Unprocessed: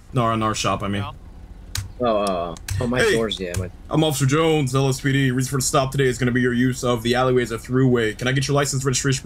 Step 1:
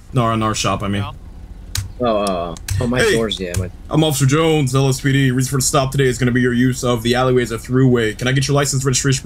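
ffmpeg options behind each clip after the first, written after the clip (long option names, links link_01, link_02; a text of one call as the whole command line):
ffmpeg -i in.wav -af "equalizer=frequency=960:width=0.32:gain=-3,volume=5.5dB" out.wav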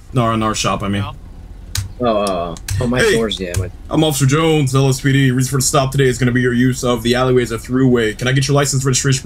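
ffmpeg -i in.wav -af "flanger=delay=2.4:depth=7.2:regen=-67:speed=0.27:shape=triangular,volume=5.5dB" out.wav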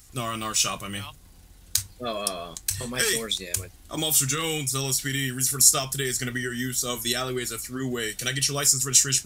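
ffmpeg -i in.wav -af "crystalizer=i=8:c=0,volume=-18dB" out.wav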